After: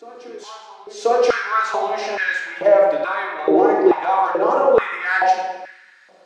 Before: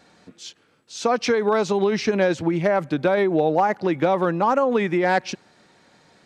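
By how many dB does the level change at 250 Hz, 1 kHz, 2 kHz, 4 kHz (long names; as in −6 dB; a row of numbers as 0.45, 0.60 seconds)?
−1.5, +5.0, +6.0, −0.5 decibels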